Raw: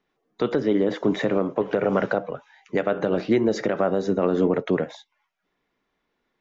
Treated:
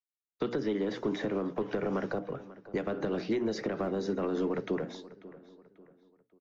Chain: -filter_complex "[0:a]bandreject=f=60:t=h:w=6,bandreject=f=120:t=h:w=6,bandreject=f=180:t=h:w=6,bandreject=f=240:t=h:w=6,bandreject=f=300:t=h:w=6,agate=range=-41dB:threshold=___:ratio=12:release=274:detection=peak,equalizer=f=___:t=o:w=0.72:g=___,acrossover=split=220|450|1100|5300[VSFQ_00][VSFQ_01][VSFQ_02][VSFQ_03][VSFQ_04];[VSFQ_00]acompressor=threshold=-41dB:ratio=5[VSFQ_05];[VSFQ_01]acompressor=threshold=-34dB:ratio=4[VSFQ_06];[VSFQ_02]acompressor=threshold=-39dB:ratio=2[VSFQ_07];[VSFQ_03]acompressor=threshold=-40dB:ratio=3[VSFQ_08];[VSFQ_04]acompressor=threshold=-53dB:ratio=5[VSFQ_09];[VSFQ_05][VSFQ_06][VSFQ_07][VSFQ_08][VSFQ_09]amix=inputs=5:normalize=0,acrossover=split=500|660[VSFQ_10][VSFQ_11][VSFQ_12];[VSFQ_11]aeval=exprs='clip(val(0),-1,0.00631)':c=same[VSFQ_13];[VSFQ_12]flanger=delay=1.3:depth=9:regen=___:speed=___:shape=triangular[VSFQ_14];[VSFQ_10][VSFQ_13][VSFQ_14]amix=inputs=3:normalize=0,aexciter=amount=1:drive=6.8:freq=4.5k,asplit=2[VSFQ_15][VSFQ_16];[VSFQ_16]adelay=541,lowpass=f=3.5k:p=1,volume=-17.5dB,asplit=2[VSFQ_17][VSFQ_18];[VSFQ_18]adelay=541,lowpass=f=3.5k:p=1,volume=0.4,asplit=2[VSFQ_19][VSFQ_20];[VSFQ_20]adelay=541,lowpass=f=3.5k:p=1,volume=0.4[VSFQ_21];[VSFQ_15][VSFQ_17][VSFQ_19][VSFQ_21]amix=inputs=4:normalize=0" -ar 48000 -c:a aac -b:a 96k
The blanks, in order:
-39dB, 570, -5.5, 81, 1.9